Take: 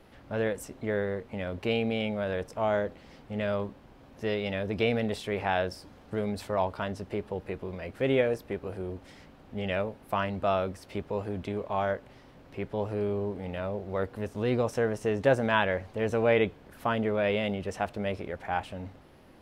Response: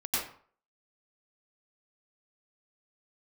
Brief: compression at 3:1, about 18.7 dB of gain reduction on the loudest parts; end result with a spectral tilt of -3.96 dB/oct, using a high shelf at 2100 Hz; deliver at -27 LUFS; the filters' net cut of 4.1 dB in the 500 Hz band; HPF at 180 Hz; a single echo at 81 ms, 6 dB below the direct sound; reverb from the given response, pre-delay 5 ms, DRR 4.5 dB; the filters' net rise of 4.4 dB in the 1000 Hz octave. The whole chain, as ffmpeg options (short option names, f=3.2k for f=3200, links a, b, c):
-filter_complex "[0:a]highpass=180,equalizer=f=500:t=o:g=-7.5,equalizer=f=1k:t=o:g=9,highshelf=f=2.1k:g=-3,acompressor=threshold=-43dB:ratio=3,aecho=1:1:81:0.501,asplit=2[a][b];[1:a]atrim=start_sample=2205,adelay=5[c];[b][c]afir=irnorm=-1:irlink=0,volume=-11.5dB[d];[a][d]amix=inputs=2:normalize=0,volume=15.5dB"